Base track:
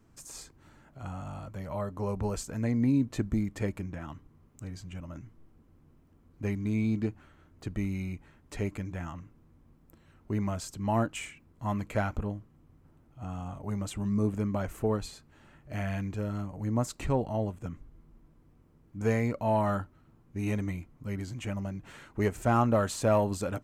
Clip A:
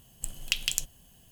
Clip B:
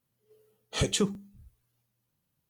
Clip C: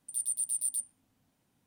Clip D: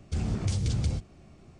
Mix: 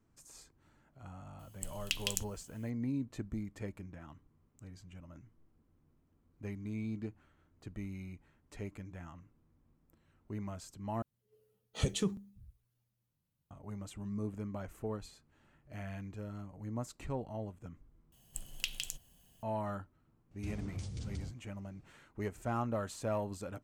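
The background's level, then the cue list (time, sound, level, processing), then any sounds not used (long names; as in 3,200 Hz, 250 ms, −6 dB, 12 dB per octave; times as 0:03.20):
base track −10.5 dB
0:01.39: mix in A −7 dB
0:11.02: overwrite with B −9.5 dB + low-shelf EQ 210 Hz +9 dB
0:18.12: overwrite with A −7.5 dB + brickwall limiter −9 dBFS
0:20.31: mix in D −14 dB
not used: C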